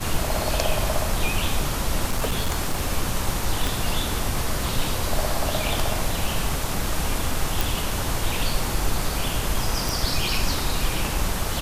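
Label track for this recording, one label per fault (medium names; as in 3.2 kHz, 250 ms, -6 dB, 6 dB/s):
2.100000	2.870000	clipped -18 dBFS
3.670000	3.670000	pop
7.610000	7.610000	pop
9.890000	9.890000	pop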